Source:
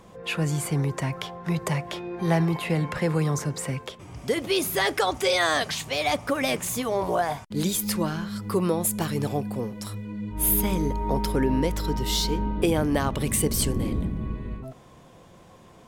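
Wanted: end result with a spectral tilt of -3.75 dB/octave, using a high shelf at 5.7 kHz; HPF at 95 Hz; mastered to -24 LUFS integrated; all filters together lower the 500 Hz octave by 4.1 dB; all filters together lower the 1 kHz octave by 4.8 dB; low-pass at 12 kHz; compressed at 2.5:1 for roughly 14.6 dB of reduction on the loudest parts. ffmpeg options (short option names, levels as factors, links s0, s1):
-af "highpass=95,lowpass=12000,equalizer=f=500:t=o:g=-4,equalizer=f=1000:t=o:g=-5,highshelf=f=5700:g=8.5,acompressor=threshold=0.0112:ratio=2.5,volume=4.47"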